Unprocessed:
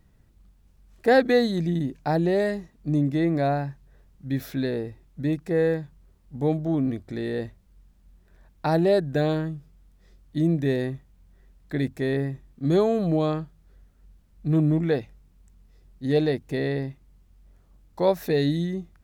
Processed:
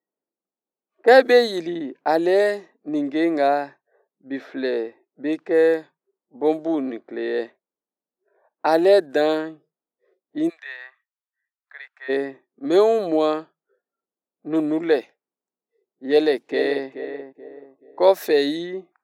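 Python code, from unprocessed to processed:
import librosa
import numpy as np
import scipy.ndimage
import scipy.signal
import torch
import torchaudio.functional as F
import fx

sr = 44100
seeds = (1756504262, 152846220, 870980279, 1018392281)

y = fx.highpass(x, sr, hz=1200.0, slope=24, at=(10.48, 12.08), fade=0.02)
y = fx.echo_throw(y, sr, start_s=16.08, length_s=0.81, ms=430, feedback_pct=35, wet_db=-10.0)
y = scipy.signal.sosfilt(scipy.signal.butter(4, 330.0, 'highpass', fs=sr, output='sos'), y)
y = fx.noise_reduce_blind(y, sr, reduce_db=22)
y = fx.env_lowpass(y, sr, base_hz=890.0, full_db=-22.5)
y = y * librosa.db_to_amplitude(6.5)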